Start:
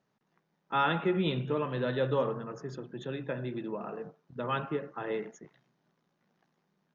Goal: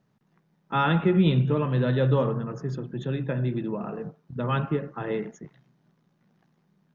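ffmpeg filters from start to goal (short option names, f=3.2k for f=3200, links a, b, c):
-af "bass=f=250:g=11,treble=f=4k:g=-1,volume=3dB"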